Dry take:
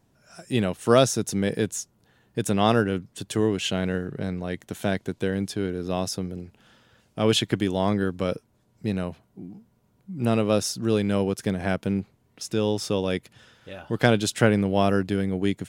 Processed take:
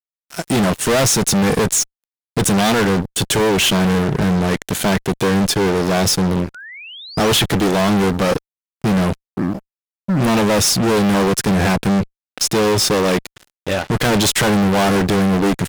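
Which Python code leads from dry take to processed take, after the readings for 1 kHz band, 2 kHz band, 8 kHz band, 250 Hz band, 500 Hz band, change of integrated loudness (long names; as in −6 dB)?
+10.0 dB, +10.5 dB, +14.5 dB, +8.5 dB, +6.5 dB, +8.5 dB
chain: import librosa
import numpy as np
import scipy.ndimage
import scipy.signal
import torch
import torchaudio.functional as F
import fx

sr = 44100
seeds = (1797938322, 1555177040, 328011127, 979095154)

y = fx.fuzz(x, sr, gain_db=38.0, gate_db=-45.0)
y = fx.spec_paint(y, sr, seeds[0], shape='rise', start_s=6.54, length_s=0.74, low_hz=1400.0, high_hz=6100.0, level_db=-35.0)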